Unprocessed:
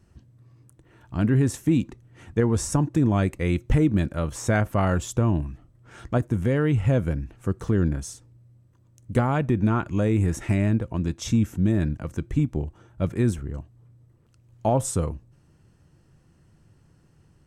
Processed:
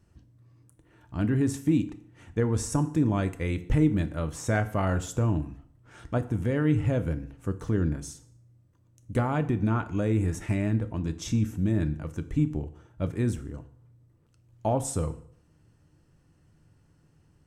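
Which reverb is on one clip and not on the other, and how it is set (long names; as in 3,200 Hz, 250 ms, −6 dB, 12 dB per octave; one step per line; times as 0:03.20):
feedback delay network reverb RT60 0.62 s, low-frequency decay 0.95×, high-frequency decay 0.85×, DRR 9.5 dB
level −4.5 dB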